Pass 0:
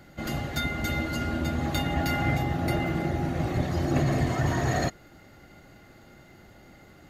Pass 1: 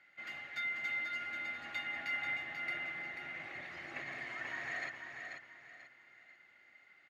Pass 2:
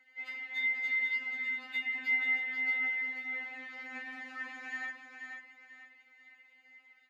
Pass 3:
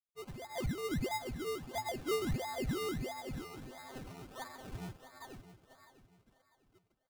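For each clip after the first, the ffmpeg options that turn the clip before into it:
ffmpeg -i in.wav -filter_complex "[0:a]bandpass=frequency=2100:width_type=q:width=3.3:csg=0,asplit=2[link_01][link_02];[link_02]aecho=0:1:488|976|1464|1952:0.501|0.165|0.0546|0.018[link_03];[link_01][link_03]amix=inputs=2:normalize=0,volume=-2dB" out.wav
ffmpeg -i in.wav -af "afftfilt=real='re*3.46*eq(mod(b,12),0)':imag='im*3.46*eq(mod(b,12),0)':win_size=2048:overlap=0.75,volume=1.5dB" out.wav
ffmpeg -i in.wav -af "aresample=8000,aeval=exprs='sgn(val(0))*max(abs(val(0))-0.00133,0)':channel_layout=same,aresample=44100,acrusher=samples=21:mix=1:aa=0.000001:lfo=1:lforange=12.6:lforate=1.5,aecho=1:1:649|1298|1947:0.2|0.0658|0.0217,volume=-3.5dB" out.wav

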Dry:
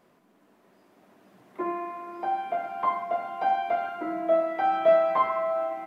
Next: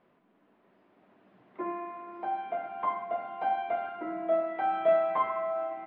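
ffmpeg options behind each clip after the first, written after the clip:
ffmpeg -i in.wav -af "lowpass=frequency=3400:width=0.5412,lowpass=frequency=3400:width=1.3066,volume=-4.5dB" out.wav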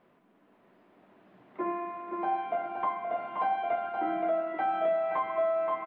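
ffmpeg -i in.wav -af "aecho=1:1:524:0.501,alimiter=limit=-23dB:level=0:latency=1:release=384,volume=2.5dB" out.wav

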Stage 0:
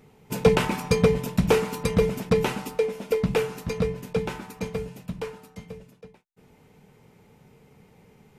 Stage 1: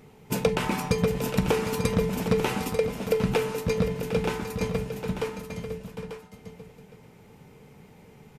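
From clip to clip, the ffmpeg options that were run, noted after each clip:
ffmpeg -i in.wav -af "acompressor=threshold=-23dB:ratio=10,aecho=1:1:42|660|755|892:0.119|0.112|0.282|0.335,volume=3dB" out.wav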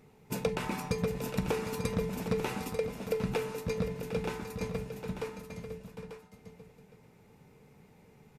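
ffmpeg -i in.wav -af "bandreject=frequency=3100:width=15,volume=-7.5dB" out.wav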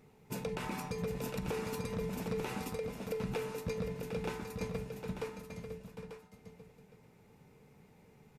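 ffmpeg -i in.wav -af "alimiter=level_in=0.5dB:limit=-24dB:level=0:latency=1:release=82,volume=-0.5dB,volume=-2.5dB" out.wav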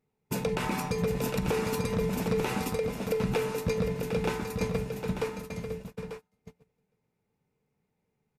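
ffmpeg -i in.wav -af "agate=range=-26dB:threshold=-49dB:ratio=16:detection=peak,volume=8.5dB" out.wav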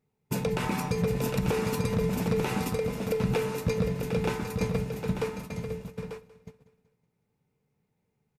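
ffmpeg -i in.wav -af "equalizer=frequency=120:width_type=o:width=1.2:gain=4.5,aecho=1:1:187|374|561|748:0.133|0.0667|0.0333|0.0167" out.wav

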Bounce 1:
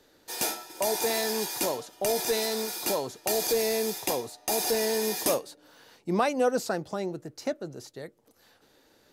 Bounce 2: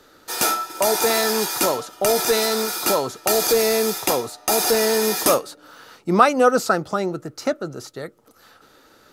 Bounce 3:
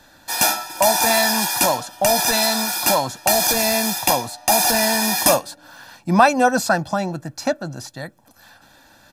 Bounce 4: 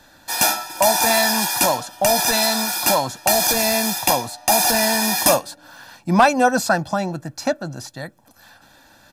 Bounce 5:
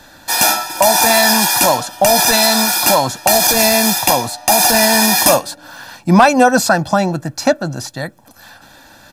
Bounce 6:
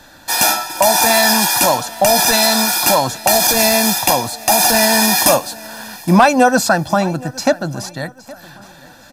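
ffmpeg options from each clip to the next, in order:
ffmpeg -i in.wav -af "equalizer=frequency=1300:width_type=o:width=0.25:gain=14.5,volume=8dB" out.wav
ffmpeg -i in.wav -af "aecho=1:1:1.2:0.9,volume=1dB" out.wav
ffmpeg -i in.wav -af "volume=5dB,asoftclip=hard,volume=-5dB" out.wav
ffmpeg -i in.wav -af "alimiter=limit=-9dB:level=0:latency=1:release=117,volume=8dB" out.wav
ffmpeg -i in.wav -af "aecho=1:1:817|1634|2451:0.0891|0.0339|0.0129,volume=-1dB" out.wav

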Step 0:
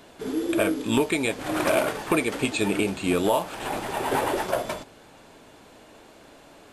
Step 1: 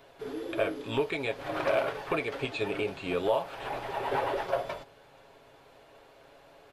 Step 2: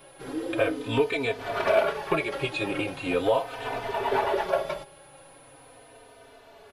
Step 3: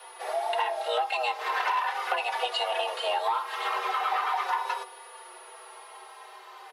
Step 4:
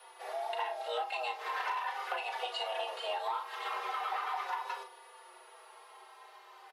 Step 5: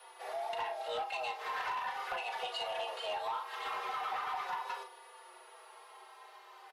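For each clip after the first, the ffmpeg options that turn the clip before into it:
ffmpeg -i in.wav -filter_complex "[0:a]aecho=1:1:7.3:0.4,acrossover=split=6200[link_01][link_02];[link_02]acompressor=threshold=-51dB:ratio=4:attack=1:release=60[link_03];[link_01][link_03]amix=inputs=2:normalize=0,equalizer=frequency=250:width_type=o:width=1:gain=-10,equalizer=frequency=500:width_type=o:width=1:gain=4,equalizer=frequency=8000:width_type=o:width=1:gain=-10,volume=-6dB" out.wav
ffmpeg -i in.wav -filter_complex "[0:a]aeval=exprs='val(0)+0.000708*sin(2*PI*10000*n/s)':channel_layout=same,asplit=2[link_01][link_02];[link_02]adelay=3.2,afreqshift=-0.4[link_03];[link_01][link_03]amix=inputs=2:normalize=1,volume=7.5dB" out.wav
ffmpeg -i in.wav -af "aeval=exprs='0.316*(cos(1*acos(clip(val(0)/0.316,-1,1)))-cos(1*PI/2))+0.0282*(cos(5*acos(clip(val(0)/0.316,-1,1)))-cos(5*PI/2))':channel_layout=same,acompressor=threshold=-26dB:ratio=5,afreqshift=360,volume=1dB" out.wav
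ffmpeg -i in.wav -filter_complex "[0:a]asplit=2[link_01][link_02];[link_02]adelay=38,volume=-8dB[link_03];[link_01][link_03]amix=inputs=2:normalize=0,volume=-8.5dB" out.wav
ffmpeg -i in.wav -af "asoftclip=type=tanh:threshold=-29.5dB" out.wav

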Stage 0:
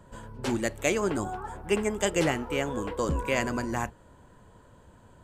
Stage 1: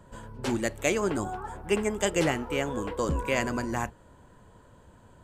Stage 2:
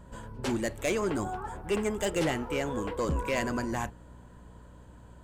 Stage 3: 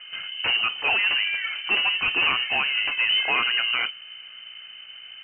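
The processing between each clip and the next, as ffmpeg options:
ffmpeg -i in.wav -af anull out.wav
ffmpeg -i in.wav -af "asoftclip=type=tanh:threshold=-21dB,aeval=exprs='val(0)+0.00282*(sin(2*PI*60*n/s)+sin(2*PI*2*60*n/s)/2+sin(2*PI*3*60*n/s)/3+sin(2*PI*4*60*n/s)/4+sin(2*PI*5*60*n/s)/5)':channel_layout=same" out.wav
ffmpeg -i in.wav -af "highshelf=frequency=2200:gain=8.5,aeval=exprs='0.251*sin(PI/2*2.82*val(0)/0.251)':channel_layout=same,lowpass=frequency=2600:width_type=q:width=0.5098,lowpass=frequency=2600:width_type=q:width=0.6013,lowpass=frequency=2600:width_type=q:width=0.9,lowpass=frequency=2600:width_type=q:width=2.563,afreqshift=-3100,volume=-5dB" out.wav

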